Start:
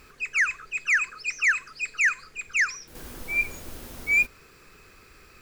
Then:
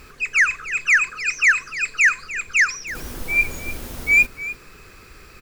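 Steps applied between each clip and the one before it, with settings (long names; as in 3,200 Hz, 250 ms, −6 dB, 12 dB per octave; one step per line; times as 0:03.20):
low-shelf EQ 150 Hz +3.5 dB
single-tap delay 299 ms −15 dB
level +6.5 dB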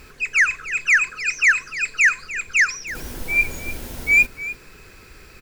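notch filter 1,200 Hz, Q 8.6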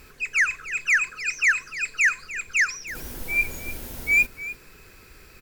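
parametric band 15,000 Hz +7 dB 0.76 octaves
level −4.5 dB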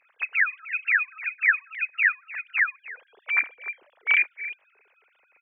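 three sine waves on the formant tracks
level −1.5 dB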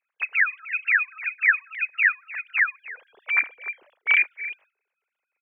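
noise gate with hold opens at −50 dBFS
level +1.5 dB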